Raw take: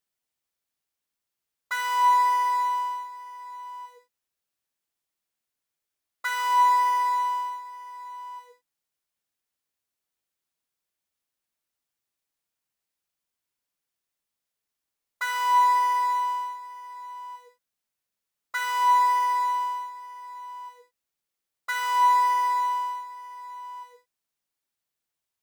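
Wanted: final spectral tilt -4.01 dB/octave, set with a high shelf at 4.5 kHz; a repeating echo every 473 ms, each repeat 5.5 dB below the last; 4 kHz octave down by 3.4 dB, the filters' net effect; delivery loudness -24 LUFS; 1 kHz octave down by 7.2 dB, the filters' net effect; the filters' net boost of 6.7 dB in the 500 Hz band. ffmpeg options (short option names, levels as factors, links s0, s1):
-af "equalizer=f=500:t=o:g=8.5,equalizer=f=1000:t=o:g=-9,equalizer=f=4000:t=o:g=-8.5,highshelf=f=4500:g=8,aecho=1:1:473|946|1419|1892|2365|2838|3311:0.531|0.281|0.149|0.079|0.0419|0.0222|0.0118,volume=1.78"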